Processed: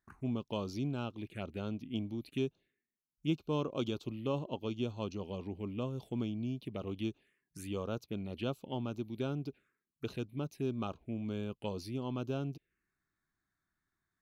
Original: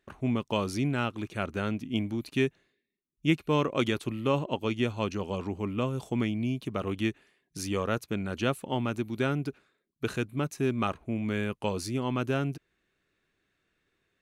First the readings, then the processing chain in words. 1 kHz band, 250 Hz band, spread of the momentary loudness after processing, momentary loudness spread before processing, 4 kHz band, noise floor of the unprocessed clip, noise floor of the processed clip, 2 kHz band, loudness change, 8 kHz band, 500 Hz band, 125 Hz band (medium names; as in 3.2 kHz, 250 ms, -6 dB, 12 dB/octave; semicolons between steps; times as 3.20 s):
-11.0 dB, -7.5 dB, 5 LU, 5 LU, -9.0 dB, -79 dBFS, under -85 dBFS, -15.5 dB, -8.0 dB, -13.5 dB, -8.0 dB, -7.0 dB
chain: touch-sensitive phaser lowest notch 480 Hz, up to 1.9 kHz, full sweep at -27 dBFS; trim -7 dB